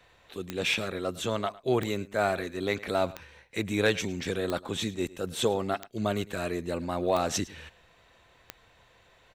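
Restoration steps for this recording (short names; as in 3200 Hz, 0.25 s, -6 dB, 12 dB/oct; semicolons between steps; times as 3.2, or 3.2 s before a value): clip repair -13.5 dBFS; de-click; inverse comb 0.106 s -20 dB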